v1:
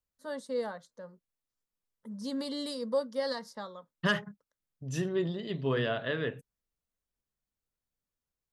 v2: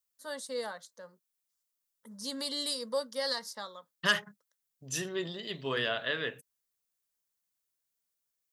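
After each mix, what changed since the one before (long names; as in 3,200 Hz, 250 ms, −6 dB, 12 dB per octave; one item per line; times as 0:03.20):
master: add spectral tilt +3.5 dB per octave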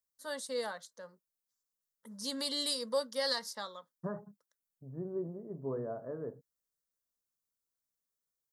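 second voice: add Gaussian smoothing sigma 11 samples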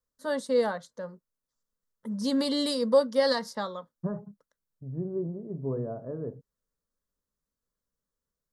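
first voice +8.5 dB
master: add spectral tilt −3.5 dB per octave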